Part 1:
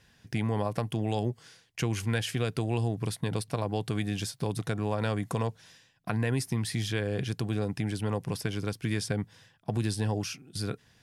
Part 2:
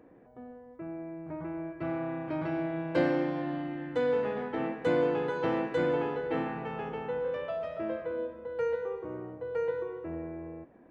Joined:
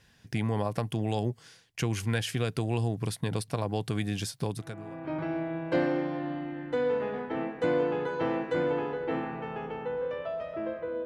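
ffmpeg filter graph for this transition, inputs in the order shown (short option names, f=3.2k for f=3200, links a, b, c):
-filter_complex "[0:a]apad=whole_dur=11.05,atrim=end=11.05,atrim=end=5.12,asetpts=PTS-STARTPTS[a];[1:a]atrim=start=1.67:end=8.28,asetpts=PTS-STARTPTS[b];[a][b]acrossfade=d=0.68:c1=qua:c2=qua"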